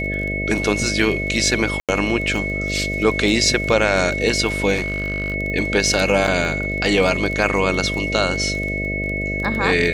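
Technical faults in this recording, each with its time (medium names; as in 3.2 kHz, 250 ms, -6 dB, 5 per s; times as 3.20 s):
buzz 50 Hz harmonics 13 -26 dBFS
crackle 18 per s -24 dBFS
whine 2.2 kHz -24 dBFS
1.80–1.89 s: dropout 87 ms
4.74–5.34 s: clipped -17.5 dBFS
6.27–6.28 s: dropout 6 ms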